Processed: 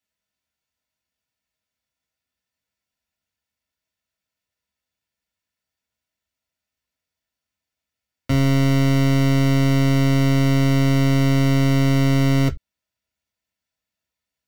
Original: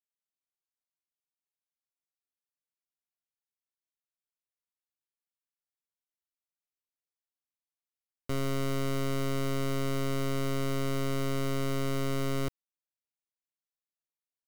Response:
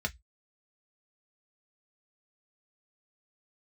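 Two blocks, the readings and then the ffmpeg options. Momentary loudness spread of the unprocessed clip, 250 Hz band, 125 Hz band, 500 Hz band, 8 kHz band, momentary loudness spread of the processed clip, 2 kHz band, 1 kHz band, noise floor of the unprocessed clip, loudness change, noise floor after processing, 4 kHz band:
2 LU, +16.0 dB, +17.5 dB, +7.5 dB, +7.5 dB, 1 LU, +12.5 dB, +9.0 dB, under -85 dBFS, +14.5 dB, under -85 dBFS, +11.0 dB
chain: -filter_complex "[1:a]atrim=start_sample=2205,atrim=end_sample=3969[a];[0:a][a]afir=irnorm=-1:irlink=0,volume=8.5dB"

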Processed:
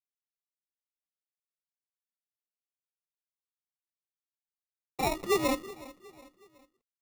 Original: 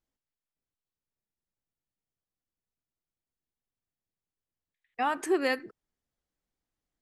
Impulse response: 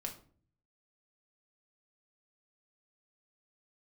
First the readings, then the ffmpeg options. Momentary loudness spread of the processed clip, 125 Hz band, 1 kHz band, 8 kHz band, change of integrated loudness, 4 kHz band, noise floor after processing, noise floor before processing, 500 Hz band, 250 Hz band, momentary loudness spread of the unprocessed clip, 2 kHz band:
20 LU, n/a, -2.0 dB, +5.0 dB, -0.5 dB, +2.5 dB, under -85 dBFS, under -85 dBFS, 0.0 dB, -0.5 dB, 8 LU, -4.5 dB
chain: -filter_complex "[0:a]afreqshift=34,acrusher=bits=8:mix=0:aa=0.000001,highshelf=f=9.6k:g=-11.5,acrusher=samples=28:mix=1:aa=0.000001,asplit=2[a][b];[b]aecho=0:1:368|736|1104:0.112|0.0494|0.0217[c];[a][c]amix=inputs=2:normalize=0"

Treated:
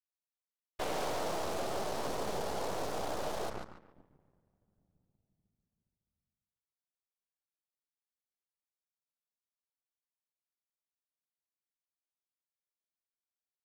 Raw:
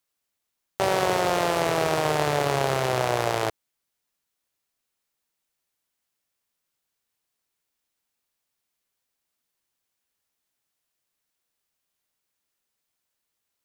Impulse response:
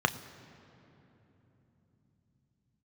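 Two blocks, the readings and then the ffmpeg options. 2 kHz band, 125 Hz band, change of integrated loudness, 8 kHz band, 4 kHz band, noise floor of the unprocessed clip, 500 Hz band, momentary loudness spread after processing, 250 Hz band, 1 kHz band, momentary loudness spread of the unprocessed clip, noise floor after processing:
-16.0 dB, -17.0 dB, -13.0 dB, -10.5 dB, -12.5 dB, -81 dBFS, -12.5 dB, 6 LU, -12.0 dB, -13.0 dB, 5 LU, under -85 dBFS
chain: -filter_complex "[0:a]asplit=2[a][b];[1:a]atrim=start_sample=2205,asetrate=41454,aresample=44100[c];[b][c]afir=irnorm=-1:irlink=0,volume=-19dB[d];[a][d]amix=inputs=2:normalize=0,afftfilt=real='hypot(re,im)*cos(2*PI*random(0))':imag='hypot(re,im)*sin(2*PI*random(1))':win_size=512:overlap=0.75,asplit=2[e][f];[f]adelay=144,lowpass=f=4.2k:p=1,volume=-5dB,asplit=2[g][h];[h]adelay=144,lowpass=f=4.2k:p=1,volume=0.36,asplit=2[i][j];[j]adelay=144,lowpass=f=4.2k:p=1,volume=0.36,asplit=2[k][l];[l]adelay=144,lowpass=f=4.2k:p=1,volume=0.36[m];[e][g][i][k][m]amix=inputs=5:normalize=0,asoftclip=type=tanh:threshold=-20.5dB,aeval=exprs='0.0944*(cos(1*acos(clip(val(0)/0.0944,-1,1)))-cos(1*PI/2))+0.0266*(cos(6*acos(clip(val(0)/0.0944,-1,1)))-cos(6*PI/2))+0.0168*(cos(7*acos(clip(val(0)/0.0944,-1,1)))-cos(7*PI/2))':c=same,adynamicequalizer=threshold=0.00501:dfrequency=2200:dqfactor=0.98:tfrequency=2200:tqfactor=0.98:attack=5:release=100:ratio=0.375:range=4:mode=cutabove:tftype=bell,alimiter=limit=-21.5dB:level=0:latency=1:release=221,volume=-6dB"

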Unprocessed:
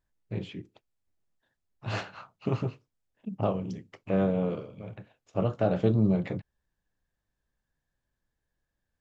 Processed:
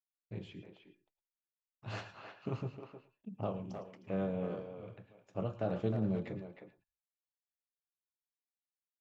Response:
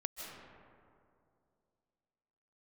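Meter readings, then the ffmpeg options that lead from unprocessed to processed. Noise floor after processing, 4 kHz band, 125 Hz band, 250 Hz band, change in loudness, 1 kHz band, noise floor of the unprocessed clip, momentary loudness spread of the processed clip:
under -85 dBFS, -9.0 dB, -9.5 dB, -9.5 dB, -9.5 dB, -9.0 dB, -84 dBFS, 18 LU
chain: -filter_complex "[0:a]asplit=2[a][b];[b]adelay=310,highpass=300,lowpass=3.4k,asoftclip=type=hard:threshold=-20.5dB,volume=-7dB[c];[a][c]amix=inputs=2:normalize=0,agate=range=-33dB:threshold=-57dB:ratio=3:detection=peak[d];[1:a]atrim=start_sample=2205,atrim=end_sample=6615,asetrate=57330,aresample=44100[e];[d][e]afir=irnorm=-1:irlink=0,volume=-4.5dB"

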